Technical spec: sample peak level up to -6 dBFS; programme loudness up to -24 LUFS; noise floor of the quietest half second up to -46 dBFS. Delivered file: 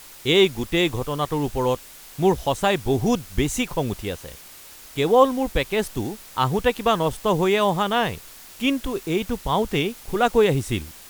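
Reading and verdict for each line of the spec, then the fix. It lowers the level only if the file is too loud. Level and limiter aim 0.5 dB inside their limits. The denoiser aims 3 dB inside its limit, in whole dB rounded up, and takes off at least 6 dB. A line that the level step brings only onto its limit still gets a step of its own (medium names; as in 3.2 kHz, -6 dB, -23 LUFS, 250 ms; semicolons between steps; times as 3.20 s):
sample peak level -3.5 dBFS: fail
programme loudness -22.5 LUFS: fail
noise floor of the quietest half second -44 dBFS: fail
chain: noise reduction 6 dB, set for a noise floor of -44 dBFS; trim -2 dB; peak limiter -6.5 dBFS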